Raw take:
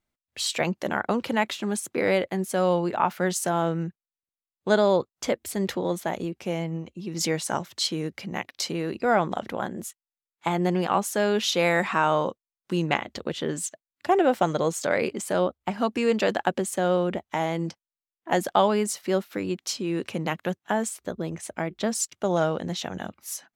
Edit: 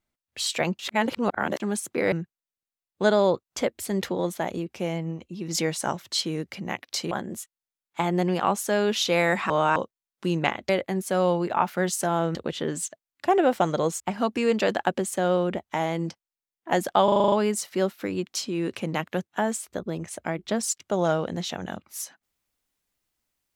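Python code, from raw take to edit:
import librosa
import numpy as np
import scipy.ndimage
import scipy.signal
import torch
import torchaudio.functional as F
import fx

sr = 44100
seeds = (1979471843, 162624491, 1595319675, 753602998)

y = fx.edit(x, sr, fx.reverse_span(start_s=0.79, length_s=0.81),
    fx.move(start_s=2.12, length_s=1.66, to_s=13.16),
    fx.cut(start_s=8.77, length_s=0.81),
    fx.reverse_span(start_s=11.97, length_s=0.26),
    fx.cut(start_s=14.81, length_s=0.79),
    fx.stutter(start_s=18.64, slice_s=0.04, count=8), tone=tone)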